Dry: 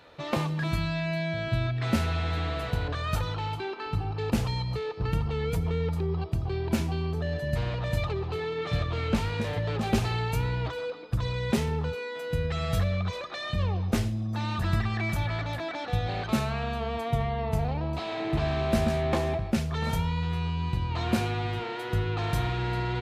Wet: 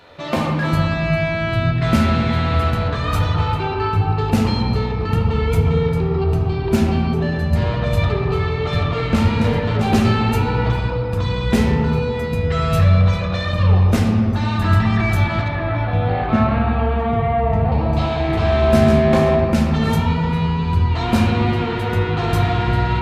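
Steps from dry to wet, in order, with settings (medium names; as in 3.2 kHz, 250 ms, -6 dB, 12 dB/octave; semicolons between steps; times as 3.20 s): 15.48–17.72 s: low-pass 2.3 kHz 12 dB/octave; reverberation RT60 2.5 s, pre-delay 3 ms, DRR -2 dB; trim +6 dB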